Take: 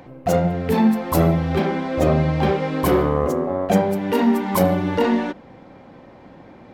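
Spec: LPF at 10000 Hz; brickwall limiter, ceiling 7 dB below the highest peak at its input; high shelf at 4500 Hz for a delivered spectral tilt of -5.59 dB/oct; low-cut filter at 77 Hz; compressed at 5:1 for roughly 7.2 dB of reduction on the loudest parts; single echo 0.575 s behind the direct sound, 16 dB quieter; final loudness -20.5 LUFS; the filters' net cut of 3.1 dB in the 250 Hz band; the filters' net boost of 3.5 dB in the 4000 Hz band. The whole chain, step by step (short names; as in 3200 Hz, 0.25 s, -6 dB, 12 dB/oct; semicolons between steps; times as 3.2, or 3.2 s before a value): HPF 77 Hz; LPF 10000 Hz; bell 250 Hz -4 dB; bell 4000 Hz +6.5 dB; high shelf 4500 Hz -3.5 dB; compressor 5:1, threshold -22 dBFS; limiter -18.5 dBFS; echo 0.575 s -16 dB; gain +7.5 dB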